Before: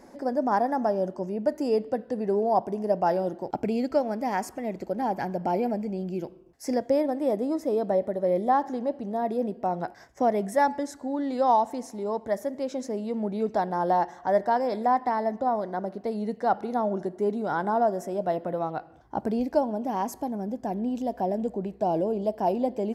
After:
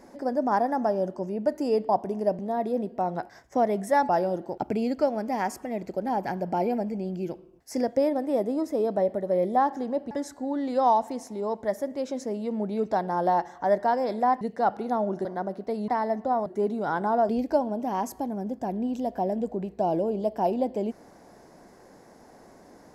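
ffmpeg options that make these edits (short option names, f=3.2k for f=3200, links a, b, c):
-filter_complex "[0:a]asplit=10[a][b][c][d][e][f][g][h][i][j];[a]atrim=end=1.892[k];[b]atrim=start=2.518:end=3.022[l];[c]atrim=start=9.038:end=10.742[m];[d]atrim=start=3.018:end=9.042[n];[e]atrim=start=10.738:end=15.042[o];[f]atrim=start=16.248:end=17.092[p];[g]atrim=start=15.618:end=16.252[q];[h]atrim=start=15.038:end=15.622[r];[i]atrim=start=17.088:end=17.922[s];[j]atrim=start=19.308[t];[k][l]acrossfade=d=0.004:c1=hsin:c2=hsin[u];[u][m]acrossfade=d=0.004:c1=hsin:c2=hsin[v];[v][n]acrossfade=d=0.004:c1=hsin:c2=hsin[w];[w][o]acrossfade=d=0.004:c1=hsin:c2=hsin[x];[x][p]acrossfade=d=0.004:c1=hsin:c2=hsin[y];[y][q]acrossfade=d=0.004:c1=hsin:c2=hsin[z];[z][r]acrossfade=d=0.004:c1=hsin:c2=hsin[aa];[aa][s]acrossfade=d=0.004:c1=hsin:c2=hsin[ab];[ab][t]acrossfade=d=0.004:c1=hsin:c2=hsin"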